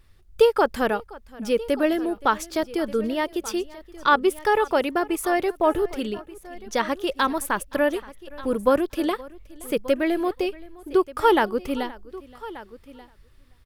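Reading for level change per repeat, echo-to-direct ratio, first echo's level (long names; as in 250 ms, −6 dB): repeats not evenly spaced, −16.5 dB, −21.5 dB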